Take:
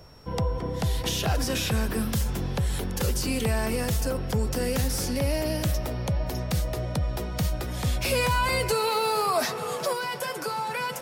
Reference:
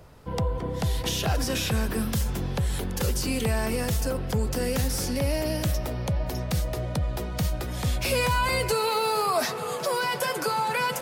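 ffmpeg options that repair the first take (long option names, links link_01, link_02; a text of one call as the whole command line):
ffmpeg -i in.wav -af "bandreject=frequency=5500:width=30,asetnsamples=nb_out_samples=441:pad=0,asendcmd='9.93 volume volume 4dB',volume=0dB" out.wav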